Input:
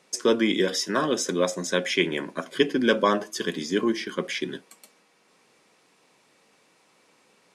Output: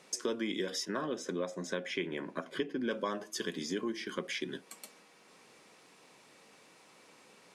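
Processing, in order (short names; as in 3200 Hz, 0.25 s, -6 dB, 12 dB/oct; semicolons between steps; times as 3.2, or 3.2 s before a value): 0.85–2.91 high shelf 3700 Hz -11 dB; compressor 3:1, threshold -39 dBFS, peak gain reduction 17.5 dB; gain +2 dB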